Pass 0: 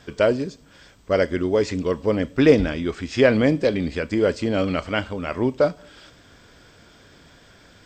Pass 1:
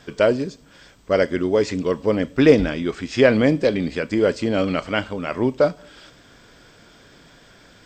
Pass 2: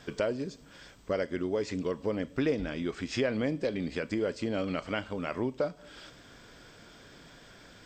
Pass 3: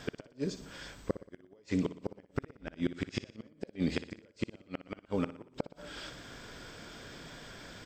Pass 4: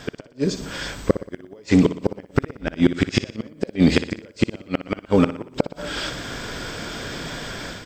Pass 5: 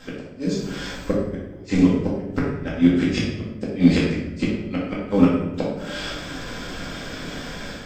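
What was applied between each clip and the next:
peaking EQ 78 Hz -13.5 dB 0.34 oct; trim +1.5 dB
compression 2.5:1, threshold -28 dBFS, peak gain reduction 14 dB; trim -3.5 dB
inverted gate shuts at -22 dBFS, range -37 dB; feedback delay 60 ms, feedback 49%, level -13.5 dB; trim +4.5 dB
level rider gain up to 9 dB; in parallel at -7 dB: hard clipper -19 dBFS, distortion -9 dB; on the sum: trim +4.5 dB
simulated room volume 240 m³, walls mixed, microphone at 2.1 m; trim -8.5 dB

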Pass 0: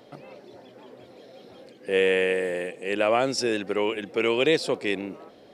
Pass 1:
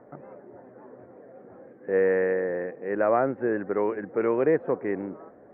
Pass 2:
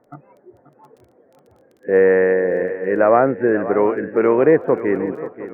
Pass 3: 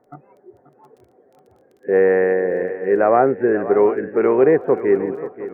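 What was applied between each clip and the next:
steep low-pass 1.8 kHz 48 dB/octave
spectral noise reduction 16 dB; shuffle delay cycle 712 ms, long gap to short 3:1, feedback 34%, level -14 dB; crackle 15 per s -49 dBFS; trim +9 dB
small resonant body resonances 400/750 Hz, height 9 dB, ringing for 85 ms; trim -2.5 dB

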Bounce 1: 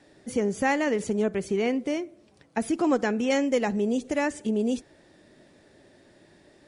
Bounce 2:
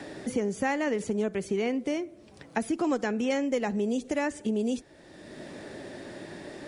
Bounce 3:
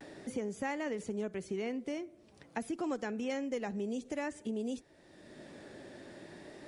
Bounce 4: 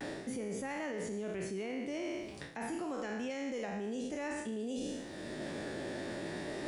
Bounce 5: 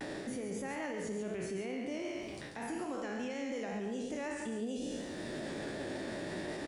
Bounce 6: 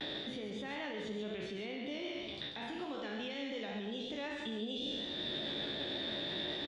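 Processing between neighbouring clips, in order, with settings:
three bands compressed up and down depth 70%; trim -3 dB
vibrato 0.48 Hz 33 cents; trim -8.5 dB
spectral sustain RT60 0.82 s; peak limiter -31 dBFS, peak gain reduction 10 dB; reverse; compression 6:1, threshold -47 dBFS, peak gain reduction 11.5 dB; reverse; trim +10.5 dB
peak limiter -33.5 dBFS, peak gain reduction 6.5 dB; vibrato 5.4 Hz 30 cents; delay 139 ms -7 dB; trim +1.5 dB
resonant low-pass 3.6 kHz, resonance Q 14; doubling 14 ms -11 dB; trim -3.5 dB

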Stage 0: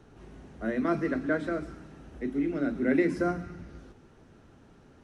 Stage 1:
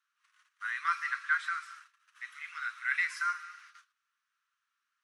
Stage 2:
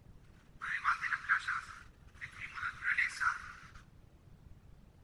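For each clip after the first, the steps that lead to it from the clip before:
gate -45 dBFS, range -22 dB; steep high-pass 1.1 kHz 72 dB/octave; trim +6 dB
added noise brown -55 dBFS; whisper effect; trim -2 dB

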